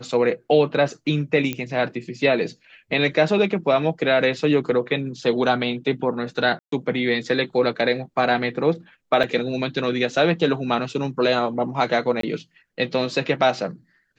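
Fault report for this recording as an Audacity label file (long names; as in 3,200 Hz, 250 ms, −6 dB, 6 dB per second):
1.530000	1.530000	click −12 dBFS
6.590000	6.720000	drop-out 133 ms
9.230000	9.240000	drop-out 6.2 ms
12.210000	12.230000	drop-out 23 ms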